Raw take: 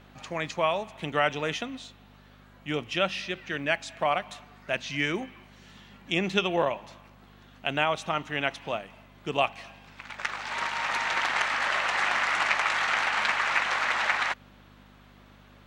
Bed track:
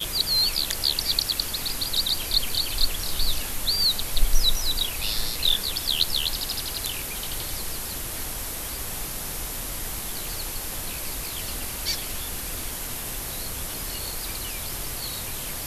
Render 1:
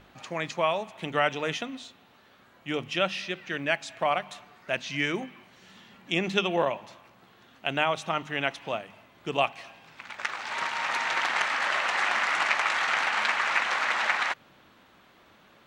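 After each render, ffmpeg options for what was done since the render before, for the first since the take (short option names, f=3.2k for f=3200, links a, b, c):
-af "bandreject=f=50:t=h:w=4,bandreject=f=100:t=h:w=4,bandreject=f=150:t=h:w=4,bandreject=f=200:t=h:w=4,bandreject=f=250:t=h:w=4"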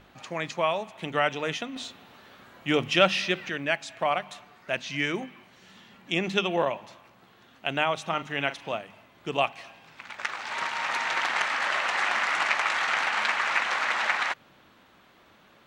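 -filter_complex "[0:a]asettb=1/sr,asplit=3[a][b][c];[a]atrim=end=1.764[d];[b]atrim=start=1.76:end=3.5,asetpts=PTS-STARTPTS,afade=t=in:d=0.004:c=qsin,afade=t=out:st=1.736:d=0.004:c=qsin,acontrast=68[e];[c]atrim=start=3.496[f];[d][e]acrossfade=d=0.004:c1=hsin:c2=qsin[g];[g][f]acrossfade=d=0.004:c1=qsin:c2=hsin,asettb=1/sr,asplit=3[h][i][j];[h]atrim=end=8.074[k];[i]atrim=start=8.07:end=8.73,asetpts=PTS-STARTPTS,afade=t=in:d=0.004:c=qsin,afade=t=out:st=0.656:d=0.004:c=qsin,asplit=2[l][m];[m]adelay=42,volume=-12.5dB[n];[l][n]amix=inputs=2:normalize=0,atrim=end_sample=29106[o];[j]atrim=start=8.726[p];[k][o]acrossfade=d=0.004:c1=hsin:c2=qsin[q];[q][p]acrossfade=d=0.004:c1=qsin:c2=hsin"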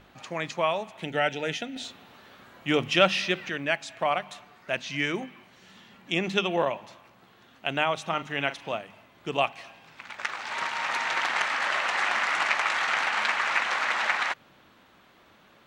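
-filter_complex "[0:a]asettb=1/sr,asplit=3[a][b][c];[a]atrim=end=1.044[d];[b]atrim=start=1.04:end=1.85,asetpts=PTS-STARTPTS,afade=t=in:d=0.004:c=qsin,afade=t=out:st=0.806:d=0.004:c=qsin,asuperstop=centerf=1100:order=4:qfactor=2.7[e];[c]atrim=start=1.846[f];[d][e]acrossfade=d=0.004:c1=hsin:c2=qsin[g];[g][f]acrossfade=d=0.004:c1=qsin:c2=hsin"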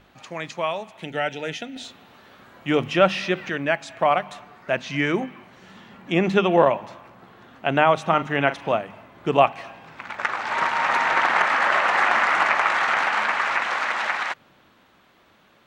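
-filter_complex "[0:a]acrossover=split=1900[a][b];[a]dynaudnorm=f=350:g=17:m=11.5dB[c];[b]alimiter=limit=-23dB:level=0:latency=1:release=59[d];[c][d]amix=inputs=2:normalize=0"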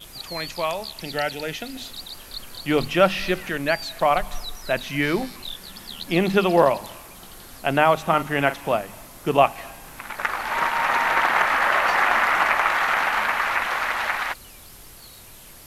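-filter_complex "[1:a]volume=-13dB[a];[0:a][a]amix=inputs=2:normalize=0"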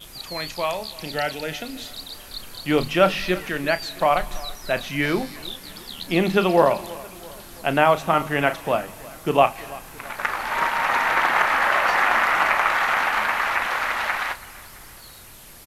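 -filter_complex "[0:a]asplit=2[a][b];[b]adelay=33,volume=-12.5dB[c];[a][c]amix=inputs=2:normalize=0,aecho=1:1:334|668|1002|1336:0.0944|0.051|0.0275|0.0149"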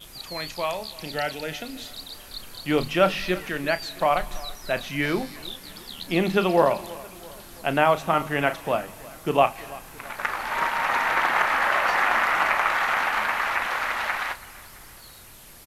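-af "volume=-2.5dB"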